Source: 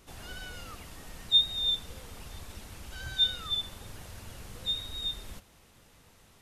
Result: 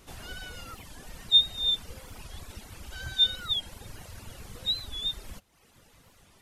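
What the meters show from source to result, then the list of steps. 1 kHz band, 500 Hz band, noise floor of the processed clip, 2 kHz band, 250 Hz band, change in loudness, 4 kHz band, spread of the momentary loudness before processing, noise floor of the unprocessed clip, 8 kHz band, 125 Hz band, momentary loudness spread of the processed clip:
+0.5 dB, +0.5 dB, -61 dBFS, +1.5 dB, +0.5 dB, +3.0 dB, +2.5 dB, 23 LU, -60 dBFS, +1.0 dB, +1.0 dB, 24 LU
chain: reverb removal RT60 0.88 s; warped record 45 rpm, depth 160 cents; trim +3 dB

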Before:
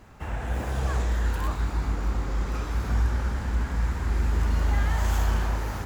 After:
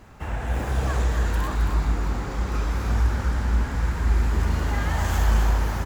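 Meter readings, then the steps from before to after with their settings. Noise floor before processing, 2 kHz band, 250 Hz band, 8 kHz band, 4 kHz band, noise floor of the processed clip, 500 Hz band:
-35 dBFS, +3.5 dB, +3.5 dB, no reading, +3.5 dB, -31 dBFS, +3.5 dB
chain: delay 269 ms -6 dB; trim +2.5 dB

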